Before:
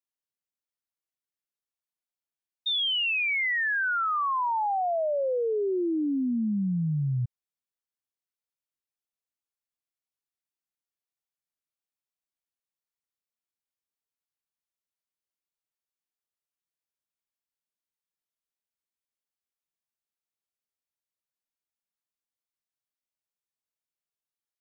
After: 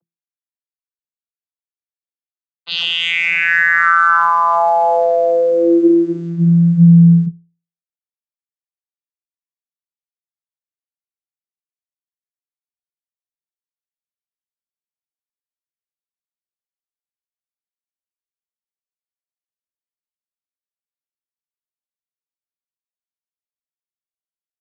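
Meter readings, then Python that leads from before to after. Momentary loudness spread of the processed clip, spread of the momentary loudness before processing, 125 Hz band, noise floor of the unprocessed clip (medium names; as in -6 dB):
8 LU, 4 LU, +18.5 dB, under -85 dBFS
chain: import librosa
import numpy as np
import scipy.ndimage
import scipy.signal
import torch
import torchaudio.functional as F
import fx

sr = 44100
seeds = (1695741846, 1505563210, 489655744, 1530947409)

p1 = fx.cvsd(x, sr, bps=64000)
p2 = fx.hum_notches(p1, sr, base_hz=60, count=6)
p3 = fx.vocoder(p2, sr, bands=16, carrier='saw', carrier_hz=169.0)
p4 = fx.rider(p3, sr, range_db=3, speed_s=2.0)
p5 = p3 + (p4 * librosa.db_to_amplitude(1.5))
p6 = fx.env_lowpass(p5, sr, base_hz=1000.0, full_db=-24.0)
p7 = fx.peak_eq(p6, sr, hz=1500.0, db=6.0, octaves=1.0)
y = p7 * librosa.db_to_amplitude(8.5)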